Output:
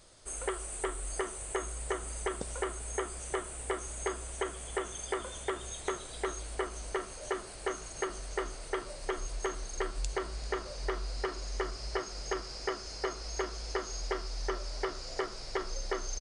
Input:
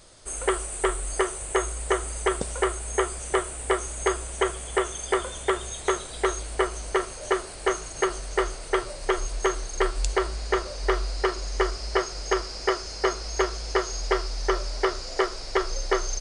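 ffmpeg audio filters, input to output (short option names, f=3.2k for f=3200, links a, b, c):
-filter_complex "[0:a]acompressor=threshold=-25dB:ratio=2.5,asplit=2[a][b];[b]asplit=4[c][d][e][f];[c]adelay=392,afreqshift=-87,volume=-18dB[g];[d]adelay=784,afreqshift=-174,volume=-24.6dB[h];[e]adelay=1176,afreqshift=-261,volume=-31.1dB[i];[f]adelay=1568,afreqshift=-348,volume=-37.7dB[j];[g][h][i][j]amix=inputs=4:normalize=0[k];[a][k]amix=inputs=2:normalize=0,volume=-6.5dB"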